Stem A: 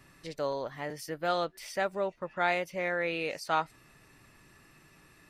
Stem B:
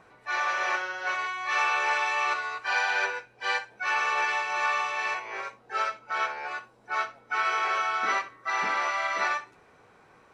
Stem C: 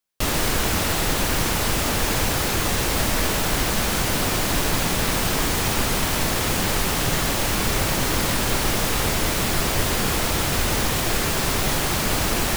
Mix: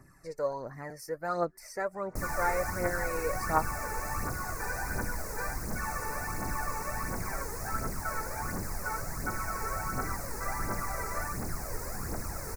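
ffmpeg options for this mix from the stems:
-filter_complex "[0:a]volume=0.75[s0];[1:a]acompressor=threshold=0.02:ratio=6,adelay=1950,volume=0.794[s1];[2:a]adelay=1950,volume=0.141[s2];[s0][s1][s2]amix=inputs=3:normalize=0,aphaser=in_gain=1:out_gain=1:delay=2.4:decay=0.57:speed=1.4:type=triangular,asuperstop=centerf=3200:order=4:qfactor=0.91"

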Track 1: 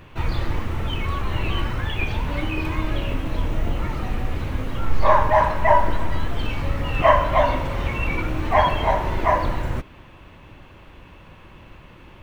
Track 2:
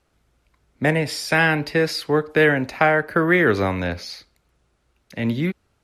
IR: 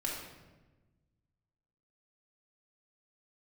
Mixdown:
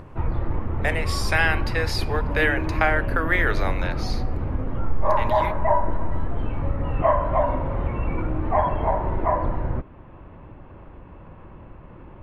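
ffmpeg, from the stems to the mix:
-filter_complex "[0:a]lowpass=1100,acompressor=threshold=0.0794:ratio=1.5,volume=1.12[s0];[1:a]highpass=640,volume=0.708,asplit=2[s1][s2];[s2]volume=0.0891[s3];[2:a]atrim=start_sample=2205[s4];[s3][s4]afir=irnorm=-1:irlink=0[s5];[s0][s1][s5]amix=inputs=3:normalize=0,acompressor=mode=upward:threshold=0.0141:ratio=2.5"

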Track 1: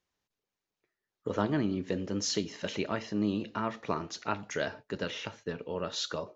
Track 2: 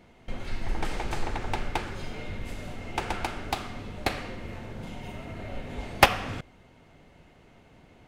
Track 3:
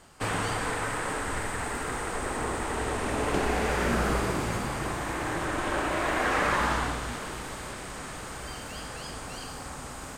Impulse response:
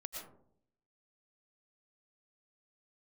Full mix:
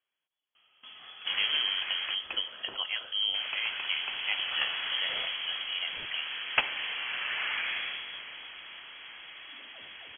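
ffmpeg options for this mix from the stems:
-filter_complex "[0:a]volume=0.891[s0];[1:a]highpass=f=130:p=1,adelay=550,volume=0.376[s1];[2:a]highpass=47,adelay=1050,volume=0.447,asplit=3[s2][s3][s4];[s2]atrim=end=2.15,asetpts=PTS-STARTPTS,afade=t=out:st=2.146:d=0.004:c=hsin[s5];[s3]atrim=start=2.15:end=3.34,asetpts=PTS-STARTPTS,volume=0[s6];[s4]atrim=start=3.34,asetpts=PTS-STARTPTS,afade=t=in:d=0.004:c=hsin[s7];[s5][s6][s7]concat=n=3:v=0:a=1[s8];[s0][s1][s8]amix=inputs=3:normalize=0,lowpass=f=2900:t=q:w=0.5098,lowpass=f=2900:t=q:w=0.6013,lowpass=f=2900:t=q:w=0.9,lowpass=f=2900:t=q:w=2.563,afreqshift=-3400"

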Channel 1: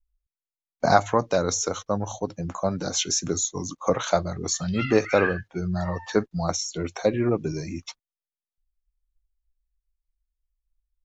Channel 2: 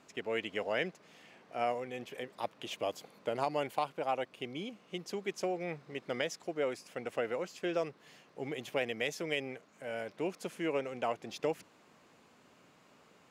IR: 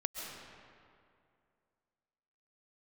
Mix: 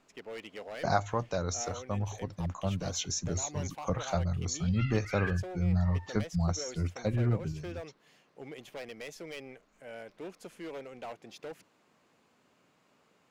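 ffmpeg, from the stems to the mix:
-filter_complex "[0:a]asubboost=boost=8:cutoff=130,volume=0.335,afade=t=out:st=7.33:d=0.29:silence=0.334965[s0];[1:a]asoftclip=type=hard:threshold=0.0266,volume=0.531[s1];[s0][s1]amix=inputs=2:normalize=0"

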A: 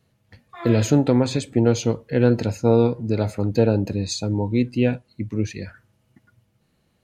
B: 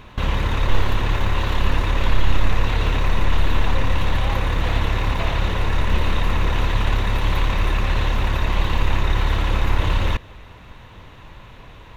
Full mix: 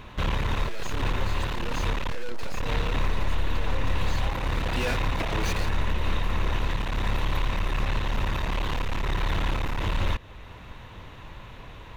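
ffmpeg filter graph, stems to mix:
-filter_complex "[0:a]highpass=f=1200:p=1,aeval=exprs='val(0)*gte(abs(val(0)),0.00891)':c=same,asplit=2[s0][s1];[s1]highpass=f=720:p=1,volume=70.8,asoftclip=type=tanh:threshold=0.211[s2];[s0][s2]amix=inputs=2:normalize=0,lowpass=f=3800:p=1,volume=0.501,volume=0.447,afade=t=in:st=4.65:d=0.22:silence=0.281838[s3];[1:a]acompressor=threshold=0.141:ratio=2,aeval=exprs='clip(val(0),-1,0.075)':c=same,volume=0.891[s4];[s3][s4]amix=inputs=2:normalize=0,alimiter=limit=0.168:level=0:latency=1:release=389"

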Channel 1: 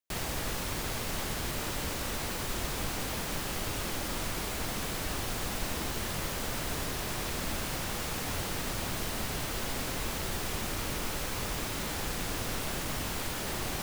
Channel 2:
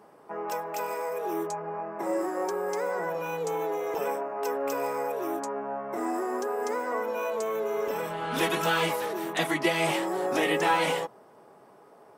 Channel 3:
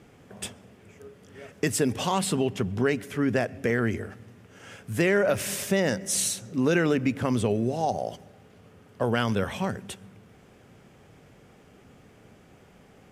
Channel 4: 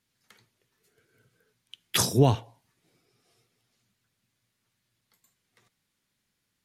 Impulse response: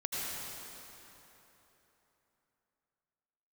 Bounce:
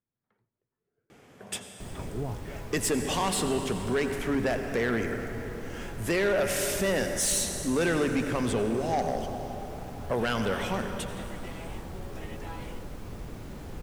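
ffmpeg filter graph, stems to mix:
-filter_complex "[0:a]tiltshelf=f=850:g=9,adelay=1700,volume=0.299[s0];[1:a]adelay=1800,volume=0.1[s1];[2:a]lowshelf=f=180:g=-9,adelay=1100,volume=0.944,asplit=2[s2][s3];[s3]volume=0.316[s4];[3:a]lowpass=1000,alimiter=limit=0.168:level=0:latency=1,volume=0.335[s5];[4:a]atrim=start_sample=2205[s6];[s4][s6]afir=irnorm=-1:irlink=0[s7];[s0][s1][s2][s5][s7]amix=inputs=5:normalize=0,asoftclip=type=tanh:threshold=0.1"

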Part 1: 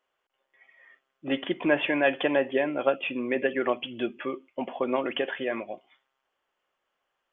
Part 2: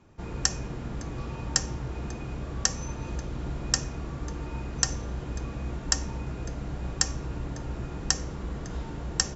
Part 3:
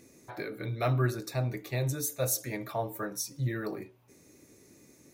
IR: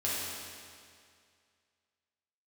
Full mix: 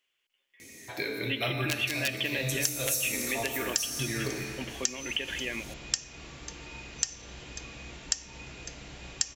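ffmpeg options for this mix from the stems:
-filter_complex "[0:a]equalizer=f=690:t=o:w=1.5:g=-10,aeval=exprs='(mod(7.08*val(0)+1,2)-1)/7.08':c=same,volume=0.668,asplit=2[s0][s1];[1:a]lowshelf=f=350:g=-11,adelay=2200,volume=0.631[s2];[2:a]adelay=600,volume=0.794,asplit=2[s3][s4];[s4]volume=0.562[s5];[s1]apad=whole_len=253017[s6];[s3][s6]sidechaincompress=threshold=0.0158:ratio=8:attack=16:release=189[s7];[3:a]atrim=start_sample=2205[s8];[s5][s8]afir=irnorm=-1:irlink=0[s9];[s0][s2][s7][s9]amix=inputs=4:normalize=0,highshelf=f=1800:t=q:w=1.5:g=9,acompressor=threshold=0.0398:ratio=3"

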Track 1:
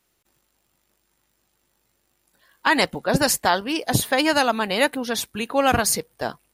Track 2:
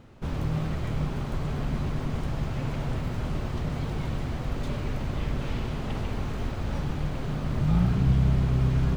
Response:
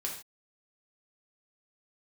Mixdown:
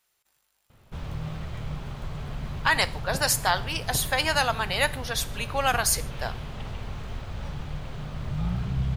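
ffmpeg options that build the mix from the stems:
-filter_complex "[0:a]lowshelf=f=400:g=-10,volume=0.668,asplit=2[s0][s1];[s1]volume=0.237[s2];[1:a]equalizer=f=3400:w=2:g=3,acontrast=64,adelay=700,volume=0.316[s3];[2:a]atrim=start_sample=2205[s4];[s2][s4]afir=irnorm=-1:irlink=0[s5];[s0][s3][s5]amix=inputs=3:normalize=0,equalizer=f=290:t=o:w=1.1:g=-8.5"

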